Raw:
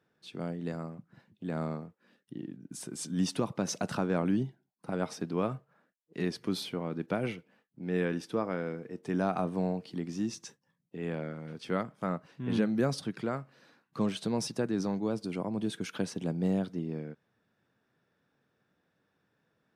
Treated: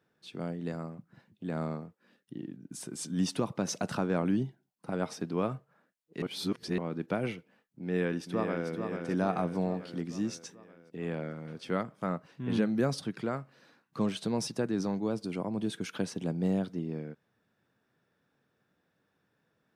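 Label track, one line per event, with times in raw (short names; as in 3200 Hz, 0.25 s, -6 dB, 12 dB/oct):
6.220000	6.780000	reverse
7.820000	8.700000	echo throw 0.44 s, feedback 60%, level -6 dB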